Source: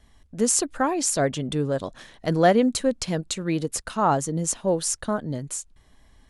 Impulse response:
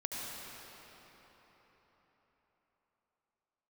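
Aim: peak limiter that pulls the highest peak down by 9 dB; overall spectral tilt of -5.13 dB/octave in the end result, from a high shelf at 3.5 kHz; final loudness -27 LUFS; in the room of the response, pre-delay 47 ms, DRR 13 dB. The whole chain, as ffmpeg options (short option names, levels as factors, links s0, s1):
-filter_complex "[0:a]highshelf=f=3500:g=-7.5,alimiter=limit=0.168:level=0:latency=1,asplit=2[s0][s1];[1:a]atrim=start_sample=2205,adelay=47[s2];[s1][s2]afir=irnorm=-1:irlink=0,volume=0.158[s3];[s0][s3]amix=inputs=2:normalize=0"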